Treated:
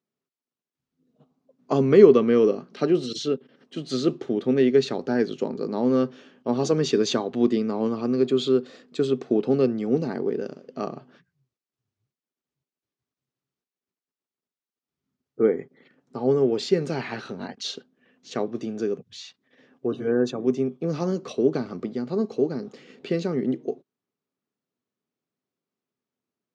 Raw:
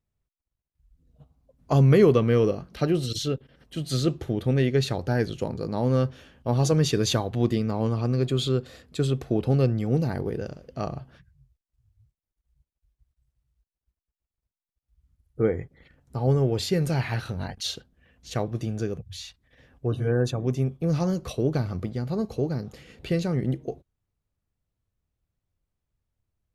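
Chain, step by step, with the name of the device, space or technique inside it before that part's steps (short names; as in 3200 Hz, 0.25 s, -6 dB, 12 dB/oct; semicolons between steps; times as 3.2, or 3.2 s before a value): television speaker (speaker cabinet 180–6800 Hz, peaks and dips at 250 Hz +7 dB, 400 Hz +8 dB, 1200 Hz +3 dB); gain -1 dB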